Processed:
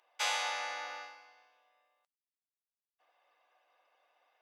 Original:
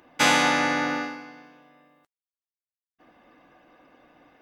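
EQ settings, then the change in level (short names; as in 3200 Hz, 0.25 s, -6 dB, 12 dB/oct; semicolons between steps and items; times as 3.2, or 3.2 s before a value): Bessel high-pass 920 Hz, order 6; bell 1600 Hz -7.5 dB 1.2 oct; high shelf 7800 Hz -7.5 dB; -7.5 dB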